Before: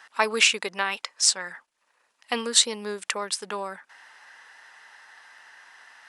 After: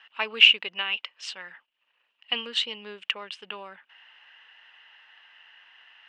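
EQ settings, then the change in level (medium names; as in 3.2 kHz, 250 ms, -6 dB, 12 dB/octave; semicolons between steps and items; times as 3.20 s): resonant low-pass 2.9 kHz, resonance Q 9.4; -10.0 dB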